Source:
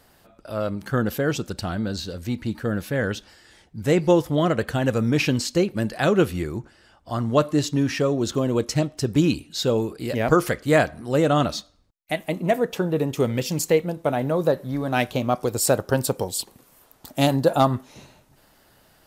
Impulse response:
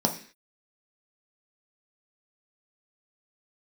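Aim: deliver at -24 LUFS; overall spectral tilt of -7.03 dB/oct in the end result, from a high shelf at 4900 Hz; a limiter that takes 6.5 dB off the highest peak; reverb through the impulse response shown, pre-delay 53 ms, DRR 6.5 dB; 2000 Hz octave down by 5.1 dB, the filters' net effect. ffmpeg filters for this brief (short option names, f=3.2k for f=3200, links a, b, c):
-filter_complex "[0:a]equalizer=f=2k:t=o:g=-5.5,highshelf=f=4.9k:g=-8.5,alimiter=limit=-13dB:level=0:latency=1,asplit=2[a][b];[1:a]atrim=start_sample=2205,adelay=53[c];[b][c]afir=irnorm=-1:irlink=0,volume=-17.5dB[d];[a][d]amix=inputs=2:normalize=0,volume=-1.5dB"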